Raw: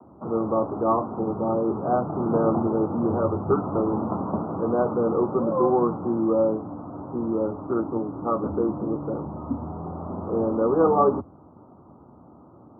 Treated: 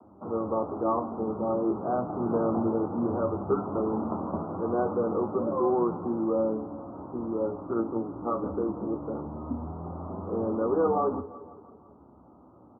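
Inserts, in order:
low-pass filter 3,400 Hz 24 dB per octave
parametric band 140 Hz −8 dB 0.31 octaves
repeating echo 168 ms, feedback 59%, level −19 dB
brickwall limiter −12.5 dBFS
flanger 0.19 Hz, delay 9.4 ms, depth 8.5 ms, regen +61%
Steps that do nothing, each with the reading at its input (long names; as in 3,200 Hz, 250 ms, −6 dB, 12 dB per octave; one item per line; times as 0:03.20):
low-pass filter 3,400 Hz: nothing at its input above 1,400 Hz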